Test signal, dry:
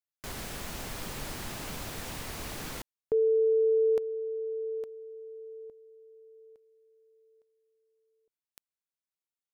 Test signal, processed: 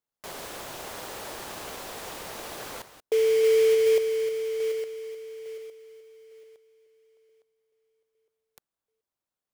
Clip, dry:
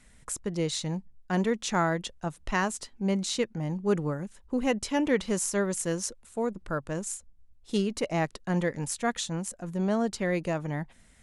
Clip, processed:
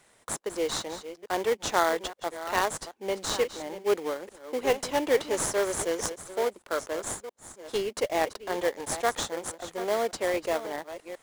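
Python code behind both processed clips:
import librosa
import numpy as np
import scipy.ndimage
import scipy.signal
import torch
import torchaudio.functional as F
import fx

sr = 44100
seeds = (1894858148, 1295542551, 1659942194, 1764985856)

p1 = fx.reverse_delay(x, sr, ms=429, wet_db=-12)
p2 = scipy.signal.sosfilt(scipy.signal.butter(4, 390.0, 'highpass', fs=sr, output='sos'), p1)
p3 = fx.sample_hold(p2, sr, seeds[0], rate_hz=2700.0, jitter_pct=20)
y = p2 + F.gain(torch.from_numpy(p3), -3.0).numpy()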